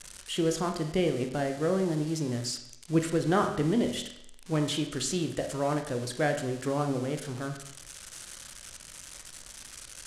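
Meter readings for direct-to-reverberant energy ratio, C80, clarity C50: 5.0 dB, 11.0 dB, 8.0 dB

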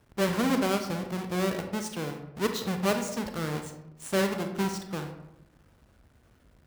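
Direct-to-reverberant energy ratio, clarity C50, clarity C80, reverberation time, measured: 5.0 dB, 7.5 dB, 10.0 dB, 0.85 s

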